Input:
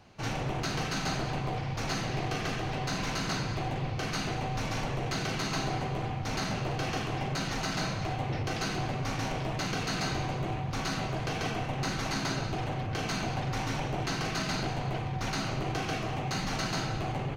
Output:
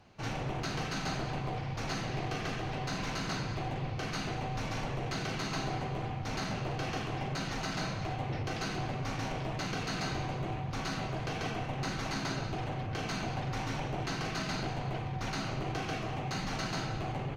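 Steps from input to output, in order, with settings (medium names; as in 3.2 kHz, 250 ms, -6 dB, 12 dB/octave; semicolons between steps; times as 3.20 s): treble shelf 7.2 kHz -5.5 dB; trim -3 dB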